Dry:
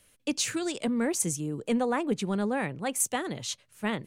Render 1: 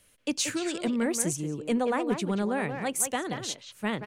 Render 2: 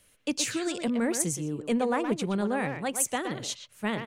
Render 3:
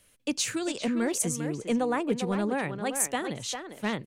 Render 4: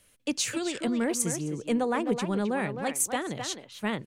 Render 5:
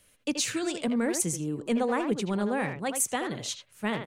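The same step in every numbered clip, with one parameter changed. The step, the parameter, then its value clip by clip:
speakerphone echo, time: 180 ms, 120 ms, 400 ms, 260 ms, 80 ms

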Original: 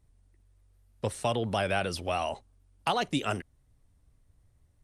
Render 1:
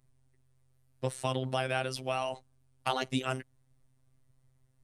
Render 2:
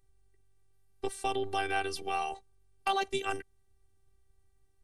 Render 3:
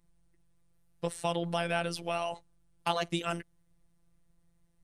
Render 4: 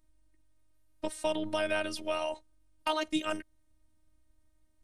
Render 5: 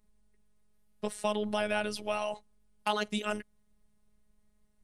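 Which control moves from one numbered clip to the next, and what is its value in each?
robot voice, frequency: 130 Hz, 390 Hz, 170 Hz, 310 Hz, 210 Hz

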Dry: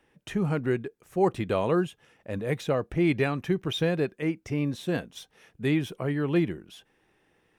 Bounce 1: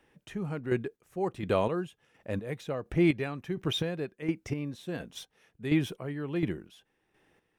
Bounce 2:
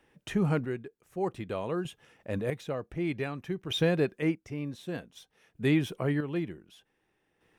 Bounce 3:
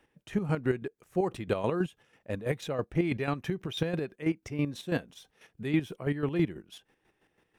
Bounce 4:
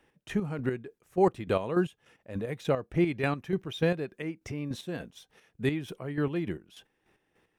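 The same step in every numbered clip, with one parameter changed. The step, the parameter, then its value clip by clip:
square tremolo, rate: 1.4 Hz, 0.54 Hz, 6.1 Hz, 3.4 Hz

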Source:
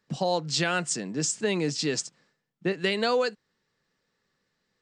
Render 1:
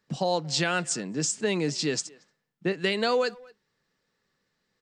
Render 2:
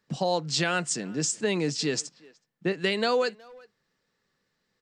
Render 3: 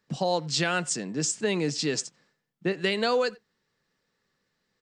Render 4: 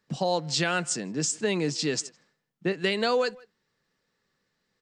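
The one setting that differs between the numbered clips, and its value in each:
speakerphone echo, time: 230 ms, 370 ms, 90 ms, 160 ms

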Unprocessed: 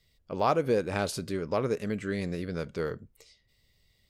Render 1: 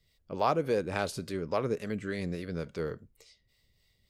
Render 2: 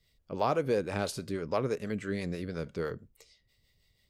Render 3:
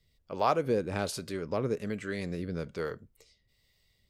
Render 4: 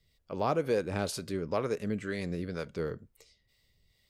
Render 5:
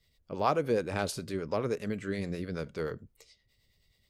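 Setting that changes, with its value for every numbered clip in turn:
harmonic tremolo, rate: 3.5 Hz, 6.1 Hz, 1.2 Hz, 2.1 Hz, 9.5 Hz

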